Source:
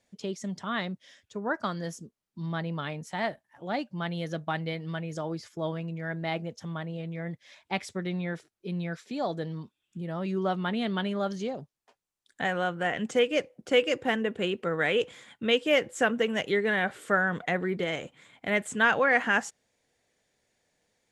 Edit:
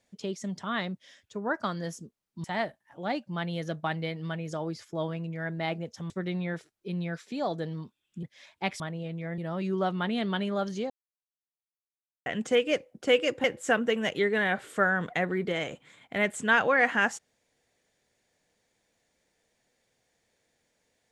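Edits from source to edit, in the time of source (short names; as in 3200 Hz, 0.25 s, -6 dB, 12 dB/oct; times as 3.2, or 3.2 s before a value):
2.44–3.08 cut
6.74–7.32 swap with 7.89–10.02
11.54–12.9 mute
14.08–15.76 cut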